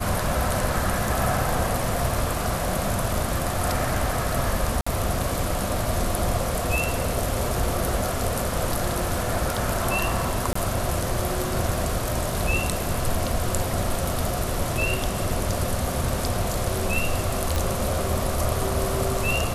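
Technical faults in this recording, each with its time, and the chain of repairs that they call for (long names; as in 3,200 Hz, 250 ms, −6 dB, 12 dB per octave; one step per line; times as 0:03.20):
0:04.81–0:04.87: drop-out 55 ms
0:10.53–0:10.55: drop-out 24 ms
0:17.56: click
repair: click removal
repair the gap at 0:04.81, 55 ms
repair the gap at 0:10.53, 24 ms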